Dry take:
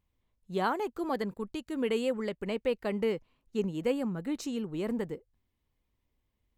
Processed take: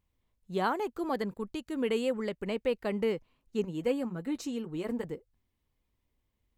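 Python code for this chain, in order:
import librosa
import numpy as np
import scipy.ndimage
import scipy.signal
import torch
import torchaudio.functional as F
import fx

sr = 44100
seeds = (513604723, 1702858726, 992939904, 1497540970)

y = fx.notch_comb(x, sr, f0_hz=200.0, at=(3.63, 5.04))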